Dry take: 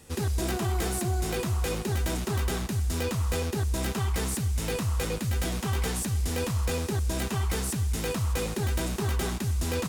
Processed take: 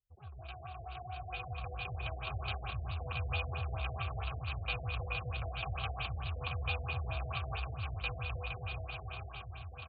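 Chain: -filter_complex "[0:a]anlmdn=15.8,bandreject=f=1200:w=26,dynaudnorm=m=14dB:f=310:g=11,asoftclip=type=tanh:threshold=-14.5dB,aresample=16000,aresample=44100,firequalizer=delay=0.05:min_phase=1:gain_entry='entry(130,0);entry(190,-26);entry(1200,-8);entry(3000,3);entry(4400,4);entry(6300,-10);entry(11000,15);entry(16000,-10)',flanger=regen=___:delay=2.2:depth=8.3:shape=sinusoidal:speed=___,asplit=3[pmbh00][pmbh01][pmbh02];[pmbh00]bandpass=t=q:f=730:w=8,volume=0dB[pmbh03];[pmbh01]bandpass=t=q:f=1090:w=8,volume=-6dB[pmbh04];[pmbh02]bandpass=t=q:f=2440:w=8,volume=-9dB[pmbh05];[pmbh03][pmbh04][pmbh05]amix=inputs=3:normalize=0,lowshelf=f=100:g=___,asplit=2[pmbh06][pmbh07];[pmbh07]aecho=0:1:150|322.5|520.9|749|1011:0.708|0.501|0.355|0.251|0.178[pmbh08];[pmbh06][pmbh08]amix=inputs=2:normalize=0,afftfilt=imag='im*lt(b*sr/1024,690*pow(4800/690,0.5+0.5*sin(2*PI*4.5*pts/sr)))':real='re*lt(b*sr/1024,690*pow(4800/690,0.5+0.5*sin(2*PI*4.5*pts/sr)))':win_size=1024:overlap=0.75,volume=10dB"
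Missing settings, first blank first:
87, 1.1, 11.5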